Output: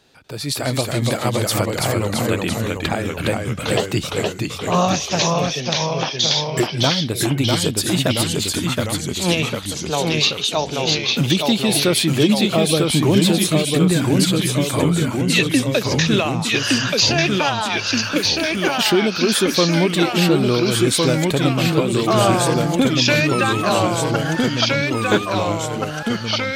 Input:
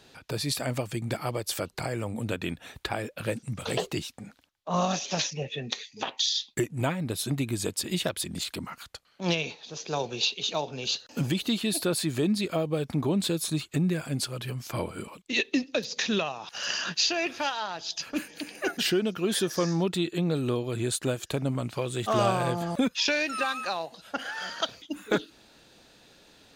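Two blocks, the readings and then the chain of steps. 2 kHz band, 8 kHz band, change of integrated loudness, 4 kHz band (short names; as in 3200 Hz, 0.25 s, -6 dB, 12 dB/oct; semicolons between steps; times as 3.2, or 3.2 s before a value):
+11.5 dB, +11.5 dB, +11.5 dB, +11.5 dB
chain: AGC gain up to 11.5 dB; echoes that change speed 0.243 s, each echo -1 st, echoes 3; gain -1.5 dB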